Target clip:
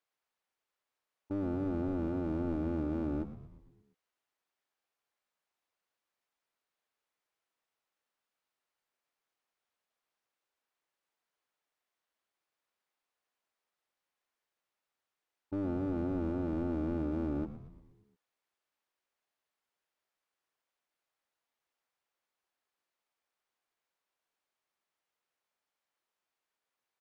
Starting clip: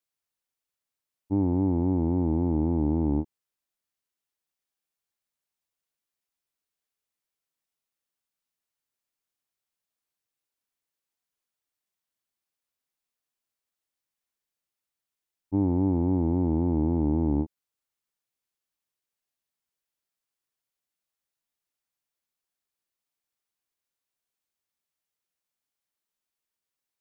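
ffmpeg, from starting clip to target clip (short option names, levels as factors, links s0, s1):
-filter_complex "[0:a]equalizer=f=150:t=o:w=2.2:g=-4,alimiter=level_in=1.06:limit=0.0631:level=0:latency=1:release=17,volume=0.944,asplit=2[s0][s1];[s1]highpass=f=720:p=1,volume=6.31,asoftclip=type=tanh:threshold=0.0596[s2];[s0][s2]amix=inputs=2:normalize=0,lowpass=f=1000:p=1,volume=0.501,aeval=exprs='clip(val(0),-1,0.0168)':c=same,asplit=7[s3][s4][s5][s6][s7][s8][s9];[s4]adelay=116,afreqshift=-83,volume=0.251[s10];[s5]adelay=232,afreqshift=-166,volume=0.138[s11];[s6]adelay=348,afreqshift=-249,volume=0.0759[s12];[s7]adelay=464,afreqshift=-332,volume=0.0417[s13];[s8]adelay=580,afreqshift=-415,volume=0.0229[s14];[s9]adelay=696,afreqshift=-498,volume=0.0126[s15];[s3][s10][s11][s12][s13][s14][s15]amix=inputs=7:normalize=0"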